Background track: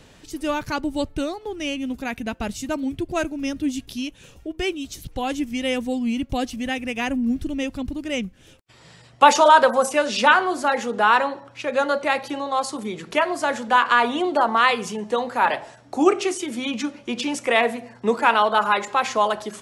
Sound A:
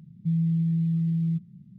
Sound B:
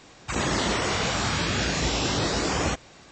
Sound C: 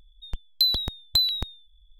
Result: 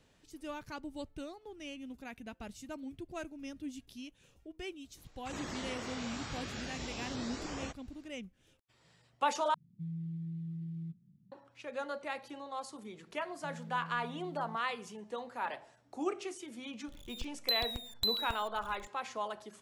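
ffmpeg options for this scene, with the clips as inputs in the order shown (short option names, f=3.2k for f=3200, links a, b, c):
-filter_complex "[1:a]asplit=2[a][b];[0:a]volume=-18dB[c];[a]equalizer=f=310:t=o:w=0.62:g=5.5[d];[b]highpass=360[e];[3:a]aeval=exprs='val(0)+0.5*0.0168*sgn(val(0))':c=same[f];[c]asplit=2[g][h];[g]atrim=end=9.544[i];[d]atrim=end=1.78,asetpts=PTS-STARTPTS,volume=-16.5dB[j];[h]atrim=start=11.316[k];[2:a]atrim=end=3.11,asetpts=PTS-STARTPTS,volume=-17dB,afade=t=in:d=0.004:c=hsin,afade=t=out:st=3.106:d=0.004:c=hsin,adelay=219177S[l];[e]atrim=end=1.78,asetpts=PTS-STARTPTS,volume=-10dB,afade=t=in:d=0.004:c=hsin,afade=t=out:st=1.776:d=0.004:c=hsin,adelay=13180[m];[f]atrim=end=1.99,asetpts=PTS-STARTPTS,volume=-11.5dB,afade=t=in:d=0.004:c=hsin,afade=t=out:st=1.986:d=0.004:c=hsin,adelay=16880[n];[i][j]acrossfade=d=0.004:c1=hsin:c2=hsin[o];[o][k]acrossfade=d=0.004:c1=hsin:c2=hsin[p];[p][l][m][n]amix=inputs=4:normalize=0"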